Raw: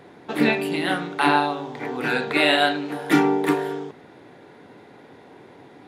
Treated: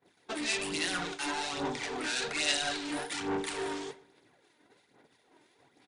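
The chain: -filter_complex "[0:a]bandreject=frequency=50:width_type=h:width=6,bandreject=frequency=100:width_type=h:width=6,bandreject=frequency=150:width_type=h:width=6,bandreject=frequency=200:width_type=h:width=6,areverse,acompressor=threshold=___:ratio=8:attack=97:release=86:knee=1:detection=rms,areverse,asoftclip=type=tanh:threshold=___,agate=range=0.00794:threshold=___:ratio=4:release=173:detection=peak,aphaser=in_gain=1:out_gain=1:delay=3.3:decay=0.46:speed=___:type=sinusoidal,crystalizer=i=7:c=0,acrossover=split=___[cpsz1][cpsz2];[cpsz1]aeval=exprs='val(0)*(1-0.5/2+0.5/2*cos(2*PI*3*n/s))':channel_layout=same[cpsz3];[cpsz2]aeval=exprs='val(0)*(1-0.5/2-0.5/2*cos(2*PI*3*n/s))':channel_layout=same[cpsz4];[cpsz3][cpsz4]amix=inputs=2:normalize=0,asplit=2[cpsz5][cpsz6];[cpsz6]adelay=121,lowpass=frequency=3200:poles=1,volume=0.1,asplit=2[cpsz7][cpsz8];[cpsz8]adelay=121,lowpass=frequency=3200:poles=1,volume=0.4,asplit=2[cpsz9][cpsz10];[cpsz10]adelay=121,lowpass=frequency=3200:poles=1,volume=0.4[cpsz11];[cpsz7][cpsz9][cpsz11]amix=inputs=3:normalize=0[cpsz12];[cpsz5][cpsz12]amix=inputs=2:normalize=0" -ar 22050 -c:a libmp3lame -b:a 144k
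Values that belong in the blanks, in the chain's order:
0.0251, 0.0211, 0.0126, 1.2, 1900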